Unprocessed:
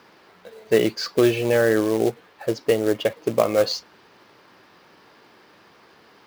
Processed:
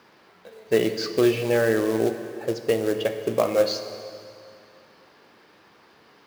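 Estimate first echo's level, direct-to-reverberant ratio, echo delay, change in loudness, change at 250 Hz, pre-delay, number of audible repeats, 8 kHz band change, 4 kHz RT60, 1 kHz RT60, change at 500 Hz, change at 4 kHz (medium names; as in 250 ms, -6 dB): no echo, 7.5 dB, no echo, -2.0 dB, -2.0 dB, 8 ms, no echo, -2.5 dB, 2.3 s, 2.4 s, -2.0 dB, -2.5 dB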